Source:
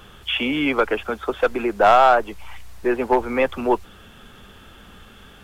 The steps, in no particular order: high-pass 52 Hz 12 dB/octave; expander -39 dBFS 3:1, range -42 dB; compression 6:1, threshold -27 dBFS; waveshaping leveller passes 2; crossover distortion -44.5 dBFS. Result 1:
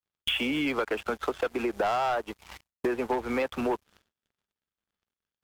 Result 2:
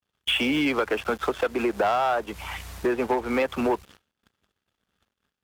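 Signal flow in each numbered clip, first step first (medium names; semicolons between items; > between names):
high-pass > crossover distortion > waveshaping leveller > expander > compression; crossover distortion > expander > compression > waveshaping leveller > high-pass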